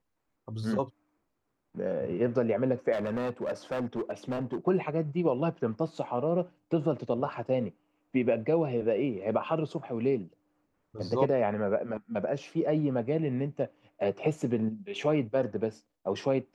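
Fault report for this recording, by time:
2.92–4.57 clipped -27.5 dBFS

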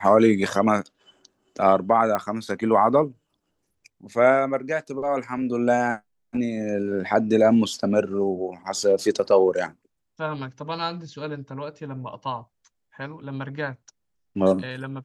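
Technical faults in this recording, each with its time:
2.15 pop -11 dBFS

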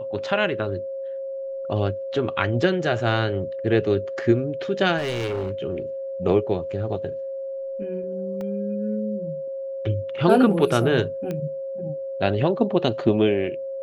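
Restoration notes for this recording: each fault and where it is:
tone 540 Hz -28 dBFS
4.97–5.52 clipped -22.5 dBFS
8.41 gap 2.1 ms
11.31 pop -17 dBFS

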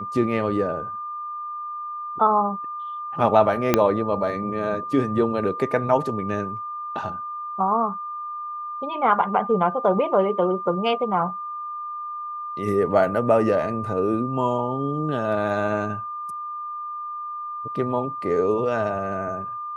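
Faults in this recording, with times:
tone 1200 Hz -29 dBFS
3.74 pop -2 dBFS

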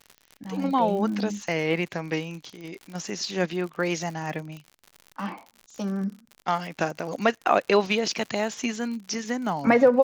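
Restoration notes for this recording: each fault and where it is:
crackle 73/s -34 dBFS

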